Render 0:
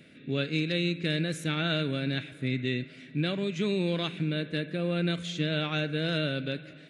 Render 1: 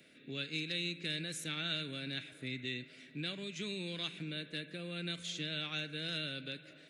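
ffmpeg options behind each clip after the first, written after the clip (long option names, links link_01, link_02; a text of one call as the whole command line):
ffmpeg -i in.wav -filter_complex "[0:a]bass=frequency=250:gain=-9,treble=frequency=4000:gain=6,acrossover=split=270|1600[link_01][link_02][link_03];[link_02]acompressor=threshold=-43dB:ratio=6[link_04];[link_01][link_04][link_03]amix=inputs=3:normalize=0,volume=-6dB" out.wav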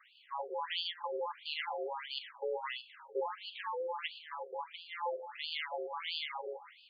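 ffmpeg -i in.wav -af "aeval=exprs='val(0)*sin(2*PI*690*n/s)':channel_layout=same,aemphasis=mode=reproduction:type=riaa,afftfilt=real='re*between(b*sr/1024,510*pow(3600/510,0.5+0.5*sin(2*PI*1.5*pts/sr))/1.41,510*pow(3600/510,0.5+0.5*sin(2*PI*1.5*pts/sr))*1.41)':imag='im*between(b*sr/1024,510*pow(3600/510,0.5+0.5*sin(2*PI*1.5*pts/sr))/1.41,510*pow(3600/510,0.5+0.5*sin(2*PI*1.5*pts/sr))*1.41)':win_size=1024:overlap=0.75,volume=11dB" out.wav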